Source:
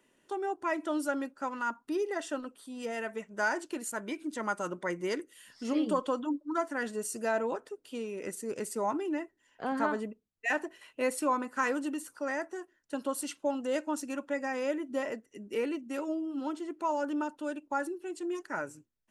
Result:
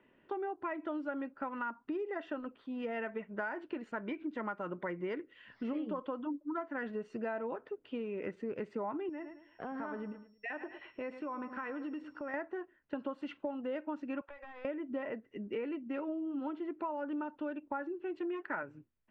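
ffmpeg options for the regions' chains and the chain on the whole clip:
ffmpeg -i in.wav -filter_complex "[0:a]asettb=1/sr,asplit=3[link_01][link_02][link_03];[link_01]atrim=end=9.094[link_04];[link_02]atrim=start=9.09:end=12.34,asetpts=PTS-STARTPTS,afade=type=in:duration=0.004:curve=qsin,afade=type=out:start_time=3.246:duration=0.004:curve=qsin,aecho=1:1:108|216|324:0.141|0.0424|0.0127,atrim=end_sample=143325,acompressor=threshold=-42dB:ratio=3:attack=3.2:release=140:knee=1:detection=peak,aeval=exprs='val(0)+0.002*sin(2*PI*5500*n/s)':channel_layout=same[link_05];[link_03]atrim=start=12.336[link_06];[link_04][link_05]acrossfade=duration=0.004:curve1=hsin:curve2=qsin[link_07];[link_07][link_06]acrossfade=duration=0.004:curve1=qsin:curve2=hsin,asettb=1/sr,asplit=3[link_08][link_09][link_10];[link_08]atrim=end=14.214[link_11];[link_09]atrim=start=14.21:end=14.65,asetpts=PTS-STARTPTS,afade=type=in:duration=0.004:curve=qsin,afade=type=out:start_time=0.436:duration=0.004:curve=qsin,highpass=frequency=580:width=0.5412,highpass=frequency=580:width=1.3066,aeval=exprs='clip(val(0),-1,0.00422)':channel_layout=same,acompressor=threshold=-46dB:ratio=16:attack=3.2:release=140:knee=1:detection=peak[link_12];[link_10]atrim=start=14.646[link_13];[link_11][link_12]acrossfade=duration=0.004:curve1=hsin:curve2=qsin[link_14];[link_14][link_13]acrossfade=duration=0.004:curve1=qsin:curve2=hsin,asettb=1/sr,asplit=3[link_15][link_16][link_17];[link_15]atrim=end=18.204[link_18];[link_16]atrim=start=18.2:end=18.63,asetpts=PTS-STARTPTS,afade=type=in:duration=0.004:curve=qsin,afade=type=out:start_time=0.426:duration=0.004:curve=qsin,highpass=120,lowpass=4500,equalizer=frequency=2100:width=0.31:gain=6[link_19];[link_17]atrim=start=18.626[link_20];[link_18][link_19]acrossfade=duration=0.004:curve1=hsin:curve2=qsin[link_21];[link_21][link_20]acrossfade=duration=0.004:curve1=qsin:curve2=hsin,lowpass=frequency=2700:width=0.5412,lowpass=frequency=2700:width=1.3066,equalizer=frequency=77:width_type=o:width=2.5:gain=4,acompressor=threshold=-37dB:ratio=6,volume=2dB" out.wav

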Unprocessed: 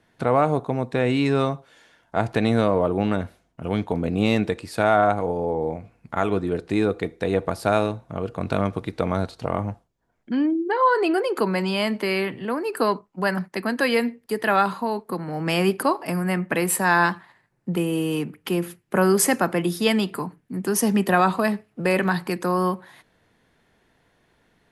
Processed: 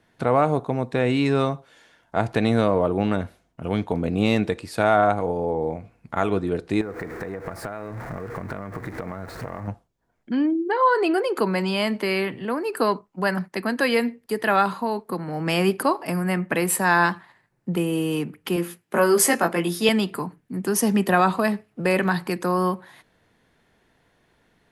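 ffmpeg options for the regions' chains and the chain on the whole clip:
ffmpeg -i in.wav -filter_complex "[0:a]asettb=1/sr,asplit=3[link_01][link_02][link_03];[link_01]atrim=end=6.814[link_04];[link_02]atrim=start=6.81:end=9.68,asetpts=PTS-STARTPTS,afade=type=in:duration=0.004:curve=qsin,afade=type=out:start_time=2.866:duration=0.004:curve=qsin,aeval=exprs='val(0)+0.5*0.0299*sgn(val(0))':channel_layout=same,highshelf=frequency=2400:width_type=q:width=3:gain=-8,acompressor=threshold=-27dB:ratio=16:attack=3.2:release=140:knee=1:detection=peak[link_05];[link_03]atrim=start=9.676[link_06];[link_04][link_05]acrossfade=duration=0.004:curve1=hsin:curve2=qsin[link_07];[link_07][link_06]acrossfade=duration=0.004:curve1=qsin:curve2=hsin,asettb=1/sr,asplit=3[link_08][link_09][link_10];[link_08]atrim=end=18.564[link_11];[link_09]atrim=start=18.56:end=19.89,asetpts=PTS-STARTPTS,afade=type=in:duration=0.004:curve=qsin,afade=type=out:start_time=1.326:duration=0.004:curve=qsin,highpass=frequency=290:poles=1,asplit=2[link_12][link_13];[link_13]adelay=18,volume=-2.5dB[link_14];[link_12][link_14]amix=inputs=2:normalize=0,atrim=end_sample=58653[link_15];[link_10]atrim=start=19.886[link_16];[link_11][link_15]acrossfade=duration=0.004:curve1=hsin:curve2=qsin[link_17];[link_17][link_16]acrossfade=duration=0.004:curve1=qsin:curve2=hsin" out.wav

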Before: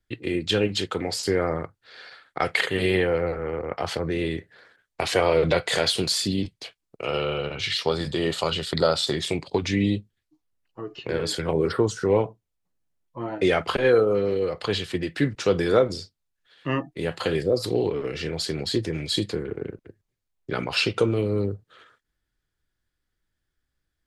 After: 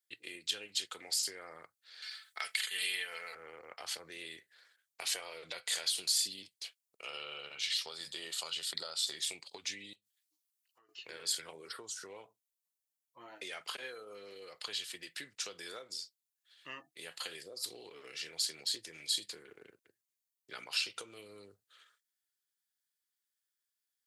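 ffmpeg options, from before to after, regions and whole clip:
ffmpeg -i in.wav -filter_complex "[0:a]asettb=1/sr,asplit=3[link_01][link_02][link_03];[link_01]atrim=end=2.024[link_04];[link_02]atrim=start=2.02:end=3.35,asetpts=PTS-STARTPTS,afade=type=in:duration=0.004:curve=qsin,afade=type=out:start_time=1.326:duration=0.004:curve=qsin,tiltshelf=frequency=860:gain=-9,aecho=1:1:4.6:0.55,atrim=end_sample=58653[link_05];[link_03]atrim=start=3.346[link_06];[link_04][link_05]acrossfade=duration=0.004:curve1=hsin:curve2=qsin[link_07];[link_07][link_06]acrossfade=duration=0.004:curve1=qsin:curve2=hsin,asettb=1/sr,asplit=3[link_08][link_09][link_10];[link_08]atrim=end=9.934[link_11];[link_09]atrim=start=9.93:end=10.89,asetpts=PTS-STARTPTS,afade=type=in:duration=0.004:curve=qsin,afade=type=out:start_time=0.956:duration=0.004:curve=qsin,tiltshelf=frequency=680:gain=-5,volume=25dB,asoftclip=hard,volume=-25dB,acompressor=threshold=-48dB:ratio=6:attack=3.2:release=140:knee=1:detection=peak[link_12];[link_10]atrim=start=10.886[link_13];[link_11][link_12]acrossfade=duration=0.004:curve1=hsin:curve2=qsin[link_14];[link_14][link_13]acrossfade=duration=0.004:curve1=qsin:curve2=hsin,acompressor=threshold=-23dB:ratio=6,aderivative" out.wav

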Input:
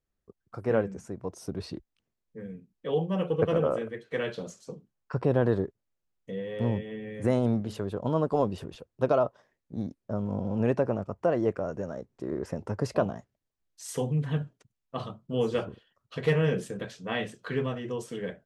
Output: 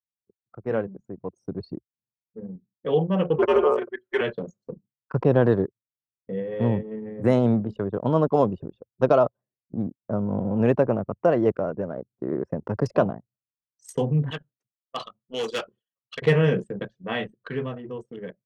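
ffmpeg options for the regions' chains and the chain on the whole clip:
ffmpeg -i in.wav -filter_complex "[0:a]asettb=1/sr,asplit=3[link_01][link_02][link_03];[link_01]atrim=end=3.384[link_04];[link_02]atrim=start=3.38:end=4.21,asetpts=PTS-STARTPTS,afade=type=in:duration=0.004:curve=qsin,afade=type=out:start_time=0.826:duration=0.004:curve=qsin,lowshelf=frequency=450:width_type=q:width=1.5:gain=-13,aecho=1:1:6:0.92,atrim=end_sample=36603,afreqshift=-100[link_05];[link_03]atrim=start=4.206[link_06];[link_04][link_05]acrossfade=duration=0.004:curve1=hsin:curve2=qsin[link_07];[link_07][link_06]acrossfade=duration=0.004:curve1=qsin:curve2=hsin,asettb=1/sr,asplit=3[link_08][link_09][link_10];[link_08]atrim=end=14.304[link_11];[link_09]atrim=start=14.3:end=16.22,asetpts=PTS-STARTPTS,afade=type=in:duration=0.004:curve=qsin,afade=type=out:start_time=1.916:duration=0.004:curve=qsin,highpass=frequency=830:poles=1,highshelf=frequency=2000:gain=11,asoftclip=type=hard:threshold=-28.5dB[link_12];[link_10]atrim=start=16.216[link_13];[link_11][link_12]acrossfade=duration=0.004:curve1=hsin:curve2=qsin[link_14];[link_14][link_13]acrossfade=duration=0.004:curve1=qsin:curve2=hsin,highpass=frequency=100:width=0.5412,highpass=frequency=100:width=1.3066,anlmdn=2.51,dynaudnorm=framelen=140:gausssize=21:maxgain=7dB,volume=-1dB" out.wav

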